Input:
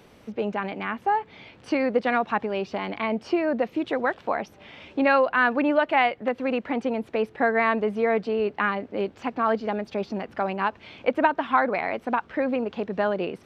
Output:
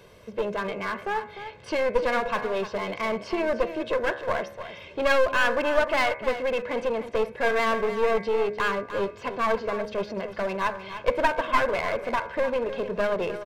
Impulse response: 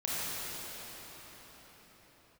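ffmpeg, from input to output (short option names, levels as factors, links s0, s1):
-filter_complex "[0:a]aecho=1:1:1.9:0.65,bandreject=f=69.92:t=h:w=4,bandreject=f=139.84:t=h:w=4,bandreject=f=209.76:t=h:w=4,bandreject=f=279.68:t=h:w=4,bandreject=f=349.6:t=h:w=4,bandreject=f=419.52:t=h:w=4,bandreject=f=489.44:t=h:w=4,bandreject=f=559.36:t=h:w=4,bandreject=f=629.28:t=h:w=4,bandreject=f=699.2:t=h:w=4,bandreject=f=769.12:t=h:w=4,bandreject=f=839.04:t=h:w=4,bandreject=f=908.96:t=h:w=4,bandreject=f=978.88:t=h:w=4,bandreject=f=1048.8:t=h:w=4,bandreject=f=1118.72:t=h:w=4,bandreject=f=1188.64:t=h:w=4,bandreject=f=1258.56:t=h:w=4,bandreject=f=1328.48:t=h:w=4,bandreject=f=1398.4:t=h:w=4,bandreject=f=1468.32:t=h:w=4,bandreject=f=1538.24:t=h:w=4,bandreject=f=1608.16:t=h:w=4,bandreject=f=1678.08:t=h:w=4,bandreject=f=1748:t=h:w=4,bandreject=f=1817.92:t=h:w=4,bandreject=f=1887.84:t=h:w=4,bandreject=f=1957.76:t=h:w=4,bandreject=f=2027.68:t=h:w=4,bandreject=f=2097.6:t=h:w=4,bandreject=f=2167.52:t=h:w=4,bandreject=f=2237.44:t=h:w=4,bandreject=f=2307.36:t=h:w=4,bandreject=f=2377.28:t=h:w=4,bandreject=f=2447.2:t=h:w=4,bandreject=f=2517.12:t=h:w=4,bandreject=f=2587.04:t=h:w=4,aeval=exprs='clip(val(0),-1,0.0501)':c=same,asplit=2[s0][s1];[s1]aecho=0:1:301:0.266[s2];[s0][s2]amix=inputs=2:normalize=0"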